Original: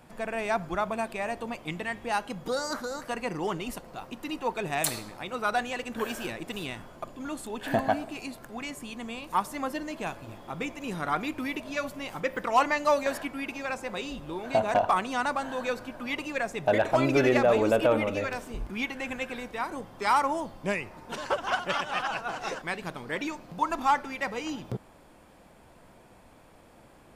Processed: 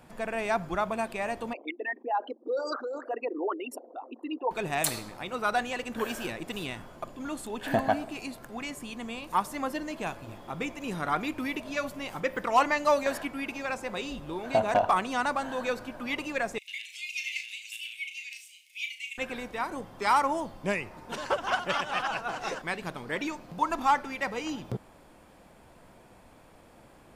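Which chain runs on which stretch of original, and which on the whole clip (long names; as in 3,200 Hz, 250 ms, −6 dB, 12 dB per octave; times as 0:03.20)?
0:01.53–0:04.51: spectral envelope exaggerated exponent 3 + linear-phase brick-wall high-pass 240 Hz
0:16.58–0:19.18: Chebyshev high-pass with heavy ripple 2,000 Hz, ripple 3 dB + frequency shifter +110 Hz + flutter between parallel walls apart 6.1 metres, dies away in 0.28 s
whole clip: no processing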